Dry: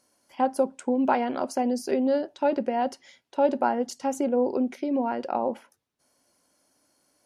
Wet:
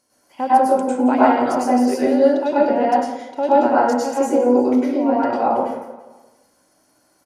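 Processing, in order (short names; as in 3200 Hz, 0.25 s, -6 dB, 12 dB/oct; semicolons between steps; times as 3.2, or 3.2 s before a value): on a send: feedback echo 0.171 s, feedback 46%, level -15.5 dB; on the sum: plate-style reverb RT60 0.8 s, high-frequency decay 0.45×, pre-delay 90 ms, DRR -8.5 dB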